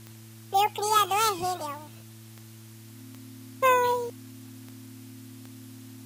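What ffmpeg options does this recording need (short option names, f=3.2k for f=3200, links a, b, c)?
-af "adeclick=t=4,bandreject=f=111.3:t=h:w=4,bandreject=f=222.6:t=h:w=4,bandreject=f=333.9:t=h:w=4,bandreject=f=260:w=30,afwtdn=0.0022"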